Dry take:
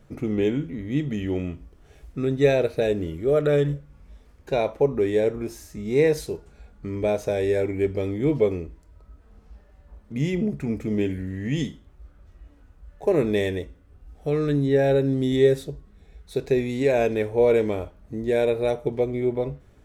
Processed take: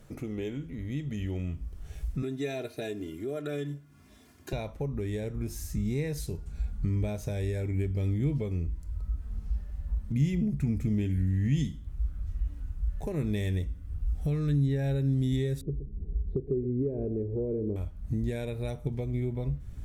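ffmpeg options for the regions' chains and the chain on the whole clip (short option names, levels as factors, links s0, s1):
-filter_complex "[0:a]asettb=1/sr,asplit=3[s0][s1][s2];[s0]atrim=end=2.224[s3];[s1]atrim=start=2.22:end=4.53,asetpts=PTS-STARTPTS,afade=t=in:d=0.004:c=qsin,afade=t=out:st=2.306:d=0.004:c=qsin,highpass=f=150:w=0.5412,highpass=f=150:w=1.3066,aecho=1:1:2.9:0.84,atrim=end_sample=101871[s4];[s2]atrim=start=4.526[s5];[s3][s4]acrossfade=d=0.004:c1=hsin:c2=qsin[s6];[s6][s5]acrossfade=d=0.004:c1=qsin:c2=hsin,asettb=1/sr,asplit=3[s7][s8][s9];[s7]atrim=end=15.614[s10];[s8]atrim=start=15.61:end=17.76,asetpts=PTS-STARTPTS,afade=t=in:d=0.004:c=qsin,afade=t=out:st=2.146:d=0.004:c=qsin,lowpass=f=390:t=q:w=4,aecho=1:1:122:0.211,atrim=end_sample=94815[s11];[s9]atrim=start=17.756[s12];[s10][s11]acrossfade=d=0.004:c1=hsin:c2=qsin[s13];[s13][s12]acrossfade=d=0.004:c1=qsin:c2=hsin,aemphasis=mode=production:type=cd,acompressor=threshold=0.00891:ratio=2,asubboost=boost=7.5:cutoff=160"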